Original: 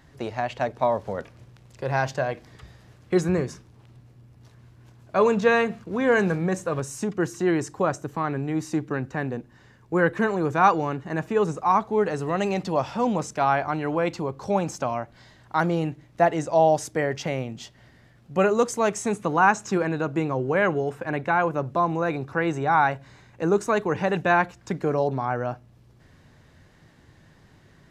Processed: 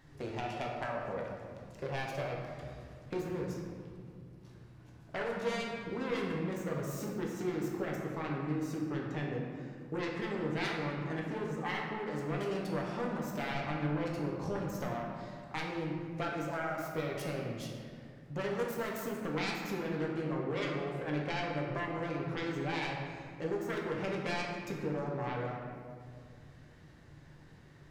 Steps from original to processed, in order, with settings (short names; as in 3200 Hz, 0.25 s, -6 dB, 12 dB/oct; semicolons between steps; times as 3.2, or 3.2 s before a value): self-modulated delay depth 0.57 ms; 13.52–14.91 low shelf 140 Hz +9.5 dB; compressor, threshold -30 dBFS, peak gain reduction 15.5 dB; reverb RT60 2.1 s, pre-delay 7 ms, DRR -2.5 dB; gain -7.5 dB